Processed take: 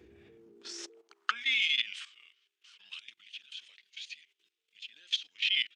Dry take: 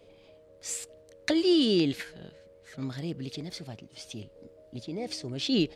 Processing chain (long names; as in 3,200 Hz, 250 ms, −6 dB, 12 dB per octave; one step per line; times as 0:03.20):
high-pass filter sweep 100 Hz → 3,900 Hz, 0:00.13–0:01.59
output level in coarse steps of 15 dB
pitch shifter −5.5 semitones
level +2.5 dB